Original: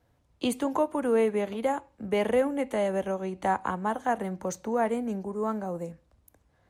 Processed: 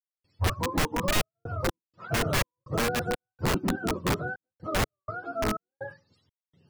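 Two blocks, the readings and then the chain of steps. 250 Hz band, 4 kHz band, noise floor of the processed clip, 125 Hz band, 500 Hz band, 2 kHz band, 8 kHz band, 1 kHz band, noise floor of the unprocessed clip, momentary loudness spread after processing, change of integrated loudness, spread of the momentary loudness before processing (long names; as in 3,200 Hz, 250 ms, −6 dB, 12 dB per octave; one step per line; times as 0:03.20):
−2.5 dB, +10.0 dB, below −85 dBFS, +9.0 dB, −6.0 dB, +6.0 dB, +7.5 dB, −2.5 dB, −68 dBFS, 10 LU, −1.0 dB, 8 LU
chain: frequency axis turned over on the octave scale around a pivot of 530 Hz
gate pattern ".xxxx.x.xx.xx" 62 BPM −60 dB
wrap-around overflow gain 22 dB
low-shelf EQ 190 Hz +11.5 dB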